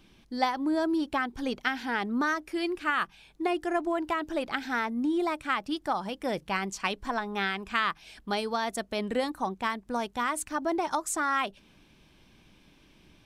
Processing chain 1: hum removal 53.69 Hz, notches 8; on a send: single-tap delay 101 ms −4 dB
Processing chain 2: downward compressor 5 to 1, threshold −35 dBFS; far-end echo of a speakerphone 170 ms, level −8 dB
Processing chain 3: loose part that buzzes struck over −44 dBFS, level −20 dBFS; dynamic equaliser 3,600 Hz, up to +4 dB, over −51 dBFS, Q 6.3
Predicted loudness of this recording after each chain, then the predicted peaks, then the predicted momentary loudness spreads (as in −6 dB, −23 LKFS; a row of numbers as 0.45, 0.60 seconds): −29.0, −38.0, −29.5 LKFS; −12.0, −19.5, −11.5 dBFS; 4, 4, 4 LU